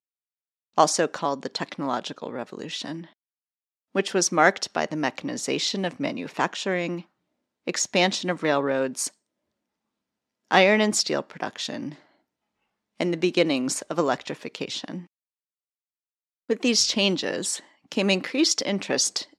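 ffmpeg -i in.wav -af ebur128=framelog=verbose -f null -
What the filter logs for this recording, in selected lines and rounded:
Integrated loudness:
  I:         -24.7 LUFS
  Threshold: -35.2 LUFS
Loudness range:
  LRA:         4.0 LU
  Threshold: -46.3 LUFS
  LRA low:   -28.2 LUFS
  LRA high:  -24.3 LUFS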